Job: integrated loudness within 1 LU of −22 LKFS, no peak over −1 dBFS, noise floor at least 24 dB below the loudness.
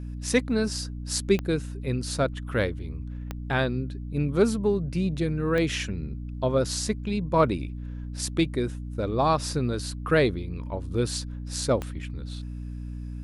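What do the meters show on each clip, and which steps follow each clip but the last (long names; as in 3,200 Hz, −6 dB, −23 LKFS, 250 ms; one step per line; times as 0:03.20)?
number of clicks 4; mains hum 60 Hz; hum harmonics up to 300 Hz; level of the hum −32 dBFS; integrated loudness −27.5 LKFS; sample peak −8.0 dBFS; target loudness −22.0 LKFS
→ click removal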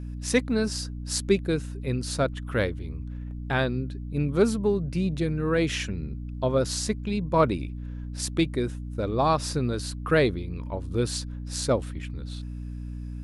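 number of clicks 0; mains hum 60 Hz; hum harmonics up to 300 Hz; level of the hum −32 dBFS
→ hum removal 60 Hz, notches 5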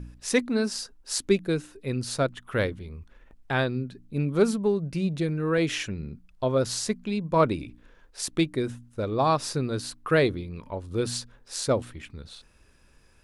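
mains hum none found; integrated loudness −27.5 LKFS; sample peak −8.0 dBFS; target loudness −22.0 LKFS
→ level +5.5 dB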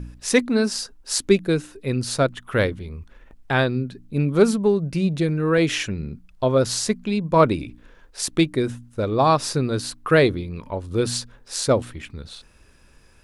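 integrated loudness −22.0 LKFS; sample peak −2.5 dBFS; background noise floor −52 dBFS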